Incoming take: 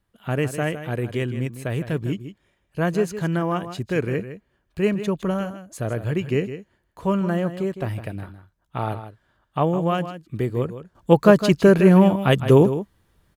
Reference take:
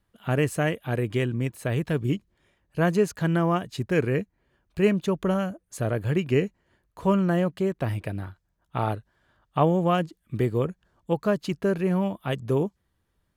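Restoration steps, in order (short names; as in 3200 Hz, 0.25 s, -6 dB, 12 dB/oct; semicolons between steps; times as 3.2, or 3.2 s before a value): inverse comb 0.158 s -11.5 dB; gain 0 dB, from 10.95 s -10.5 dB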